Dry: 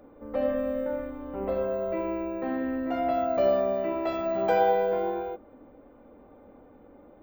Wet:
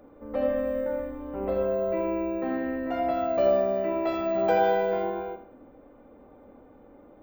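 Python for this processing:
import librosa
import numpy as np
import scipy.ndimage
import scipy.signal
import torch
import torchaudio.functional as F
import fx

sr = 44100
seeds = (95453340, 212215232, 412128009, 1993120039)

y = fx.peak_eq(x, sr, hz=7400.0, db=6.0, octaves=2.7, at=(4.63, 5.04))
y = fx.echo_feedback(y, sr, ms=82, feedback_pct=35, wet_db=-11.0)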